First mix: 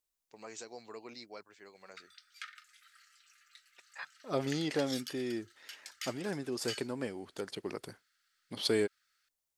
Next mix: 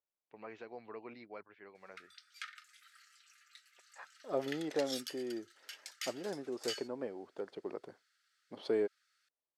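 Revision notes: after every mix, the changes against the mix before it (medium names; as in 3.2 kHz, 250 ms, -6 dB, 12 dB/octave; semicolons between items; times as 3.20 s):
first voice: add low-pass 2.7 kHz 24 dB/octave; second voice: add band-pass filter 570 Hz, Q 1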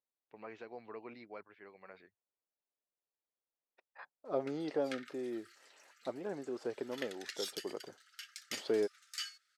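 background: entry +2.50 s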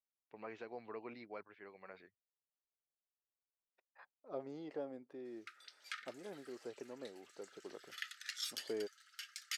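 second voice -9.0 dB; background: entry +1.00 s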